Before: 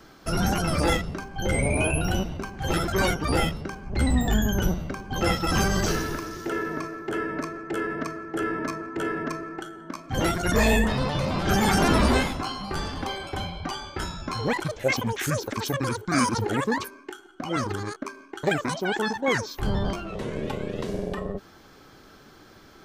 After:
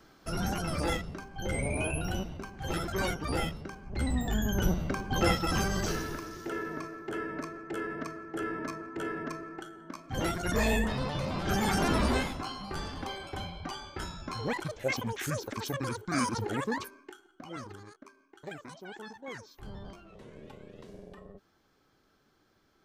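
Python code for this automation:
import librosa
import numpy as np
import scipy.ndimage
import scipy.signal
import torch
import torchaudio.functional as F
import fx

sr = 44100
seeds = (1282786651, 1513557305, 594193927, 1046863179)

y = fx.gain(x, sr, db=fx.line((4.33, -8.0), (5.0, 1.5), (5.63, -7.0), (16.85, -7.0), (17.94, -18.5)))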